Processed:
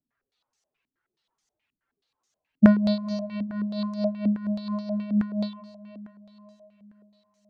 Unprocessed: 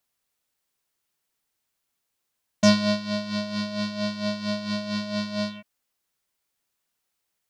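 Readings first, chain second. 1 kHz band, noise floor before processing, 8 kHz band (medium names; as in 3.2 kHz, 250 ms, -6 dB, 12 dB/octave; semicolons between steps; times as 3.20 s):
-5.5 dB, -80 dBFS, under -20 dB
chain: spectral contrast enhancement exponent 2; echo that smears into a reverb 516 ms, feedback 44%, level -14.5 dB; step-sequenced low-pass 9.4 Hz 260–6300 Hz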